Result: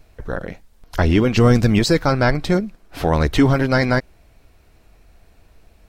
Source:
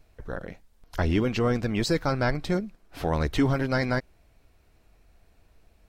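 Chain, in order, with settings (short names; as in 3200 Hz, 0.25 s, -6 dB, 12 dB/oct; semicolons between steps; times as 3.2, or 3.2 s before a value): 1.37–1.79 tone controls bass +6 dB, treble +8 dB; gain +8.5 dB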